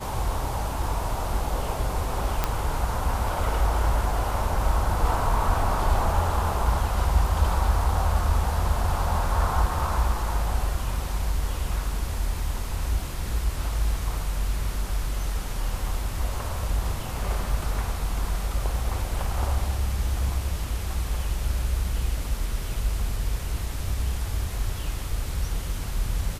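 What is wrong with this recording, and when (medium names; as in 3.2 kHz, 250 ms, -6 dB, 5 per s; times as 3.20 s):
2.44 s: pop -8 dBFS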